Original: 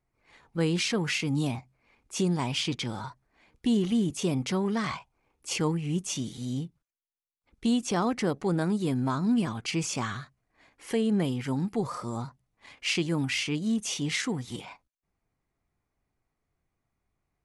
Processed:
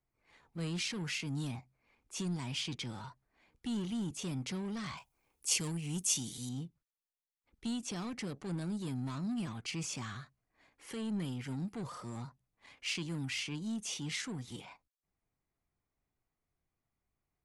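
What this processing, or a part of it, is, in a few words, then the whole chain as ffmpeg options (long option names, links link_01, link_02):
one-band saturation: -filter_complex "[0:a]acrossover=split=210|2400[link_01][link_02][link_03];[link_02]asoftclip=type=tanh:threshold=-36.5dB[link_04];[link_01][link_04][link_03]amix=inputs=3:normalize=0,asettb=1/sr,asplit=3[link_05][link_06][link_07];[link_05]atrim=end=4.974[link_08];[link_06]atrim=start=4.97:end=6.49,asetpts=PTS-STARTPTS,afade=type=in:duration=0.004:curve=qsin,afade=type=out:start_time=1.516:duration=0.004:curve=qsin,aemphasis=mode=production:type=75kf[link_09];[link_07]atrim=start=6.486[link_10];[link_08][link_09]acrossfade=duration=0.004:curve1=hsin:curve2=qsin[link_11];[link_11][link_10]acrossfade=duration=0.004:curve1=qsin:curve2=hsin,volume=-7dB"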